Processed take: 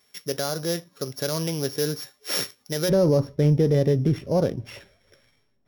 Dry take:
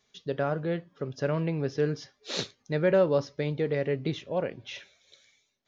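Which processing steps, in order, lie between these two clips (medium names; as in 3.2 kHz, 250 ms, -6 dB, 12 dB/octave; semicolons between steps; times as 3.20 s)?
sorted samples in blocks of 8 samples; tilt EQ +1.5 dB/octave, from 2.88 s -3.5 dB/octave; peak limiter -17 dBFS, peak gain reduction 7 dB; trim +5 dB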